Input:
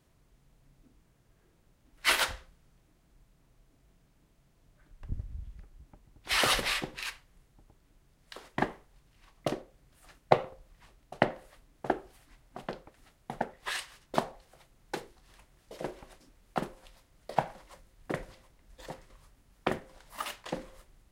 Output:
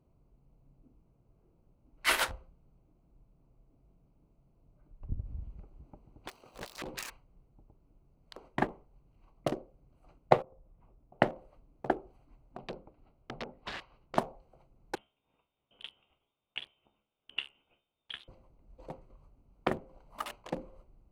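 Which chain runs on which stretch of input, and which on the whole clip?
0:05.25–0:07.10: phase distortion by the signal itself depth 0.47 ms + low-shelf EQ 180 Hz −8 dB + compressor whose output falls as the input rises −42 dBFS
0:10.42–0:11.20: high-frequency loss of the air 460 metres + downward compressor 2.5 to 1, threshold −55 dBFS
0:12.57–0:14.18: mains-hum notches 50/100/150/200/250/300/350/400 Hz + wrap-around overflow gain 28.5 dB + low-pass filter 4,600 Hz 24 dB per octave
0:14.95–0:18.28: voice inversion scrambler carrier 3,600 Hz + tuned comb filter 70 Hz, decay 0.34 s, mix 70%
whole clip: adaptive Wiener filter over 25 samples; dynamic equaliser 4,400 Hz, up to −4 dB, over −43 dBFS, Q 0.76

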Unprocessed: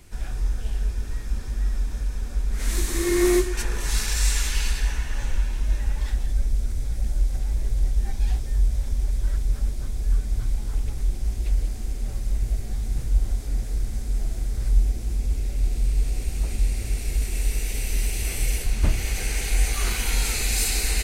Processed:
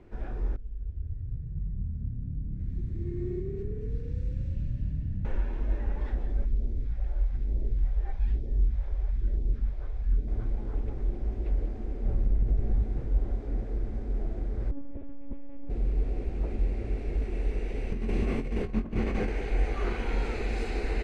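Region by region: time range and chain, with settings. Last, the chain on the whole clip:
0:00.56–0:05.25: guitar amp tone stack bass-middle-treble 10-0-1 + echo with shifted repeats 231 ms, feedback 57%, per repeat +35 Hz, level −3.5 dB
0:06.45–0:10.28: all-pass phaser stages 2, 1.1 Hz, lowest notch 210–1,300 Hz + high-frequency loss of the air 55 metres
0:12.05–0:12.83: low-shelf EQ 160 Hz +9.5 dB + downward compressor, threshold −14 dBFS
0:14.71–0:15.70: low-pass filter 2,700 Hz 6 dB per octave + hard clipping −23.5 dBFS + one-pitch LPC vocoder at 8 kHz 280 Hz
0:17.92–0:19.29: compressor whose output falls as the input rises −24 dBFS, ratio −0.5 + double-tracking delay 22 ms −9 dB + hollow resonant body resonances 210/1,100 Hz, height 10 dB, ringing for 30 ms
whole clip: low-pass filter 1,900 Hz 12 dB per octave; parametric band 390 Hz +11 dB 2 octaves; level −6 dB

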